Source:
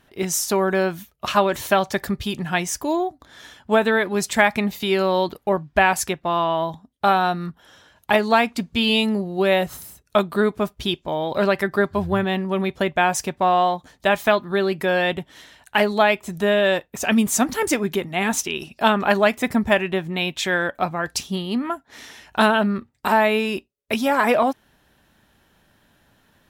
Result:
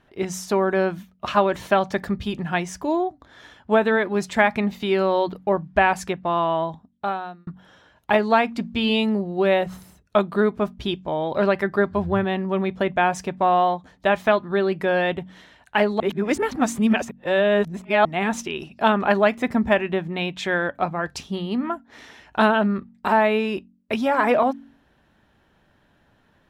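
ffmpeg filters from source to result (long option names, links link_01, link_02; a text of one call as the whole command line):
ffmpeg -i in.wav -filter_complex "[0:a]asplit=4[link_01][link_02][link_03][link_04];[link_01]atrim=end=7.47,asetpts=PTS-STARTPTS,afade=type=out:start_time=6.57:duration=0.9[link_05];[link_02]atrim=start=7.47:end=16.002,asetpts=PTS-STARTPTS,afade=type=in:duration=0.004:curve=hsin[link_06];[link_03]atrim=start=15.998:end=18.052,asetpts=PTS-STARTPTS,areverse[link_07];[link_04]atrim=start=18.048[link_08];[link_05][link_06]concat=n=2:v=0:a=1[link_09];[link_09][link_07]acrossfade=duration=0.004:curve1=hsin:curve2=hsin[link_10];[link_10][link_08]acrossfade=duration=0.004:curve1=hsin:curve2=hsin,aemphasis=mode=reproduction:type=75kf,bandreject=frequency=46.38:width_type=h:width=4,bandreject=frequency=92.76:width_type=h:width=4,bandreject=frequency=139.14:width_type=h:width=4,bandreject=frequency=185.52:width_type=h:width=4,bandreject=frequency=231.9:width_type=h:width=4,bandreject=frequency=278.28:width_type=h:width=4" out.wav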